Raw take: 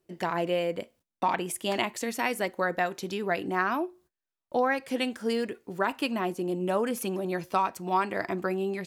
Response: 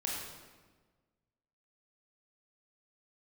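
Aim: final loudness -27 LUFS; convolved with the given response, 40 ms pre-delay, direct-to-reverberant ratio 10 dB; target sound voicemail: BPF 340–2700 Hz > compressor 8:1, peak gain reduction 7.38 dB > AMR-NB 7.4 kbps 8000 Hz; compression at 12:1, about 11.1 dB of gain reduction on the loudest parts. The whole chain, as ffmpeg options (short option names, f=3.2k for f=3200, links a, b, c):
-filter_complex "[0:a]acompressor=threshold=-32dB:ratio=12,asplit=2[a][b];[1:a]atrim=start_sample=2205,adelay=40[c];[b][c]afir=irnorm=-1:irlink=0,volume=-13.5dB[d];[a][d]amix=inputs=2:normalize=0,highpass=340,lowpass=2.7k,acompressor=threshold=-37dB:ratio=8,volume=17dB" -ar 8000 -c:a libopencore_amrnb -b:a 7400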